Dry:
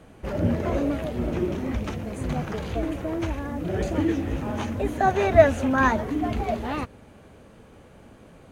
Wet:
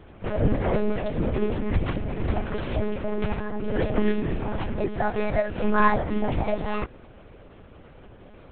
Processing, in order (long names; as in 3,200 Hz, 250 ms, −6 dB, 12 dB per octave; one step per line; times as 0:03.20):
0:01.58–0:02.25: parametric band 78 Hz +6.5 dB 0.89 octaves
0:04.29–0:05.58: downward compressor 6 to 1, threshold −23 dBFS, peak gain reduction 14 dB
one-pitch LPC vocoder at 8 kHz 210 Hz
level +2 dB